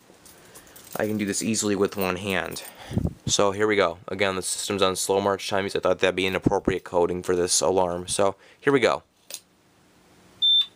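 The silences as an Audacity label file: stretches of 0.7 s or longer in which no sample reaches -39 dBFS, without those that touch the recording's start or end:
9.380000	10.420000	silence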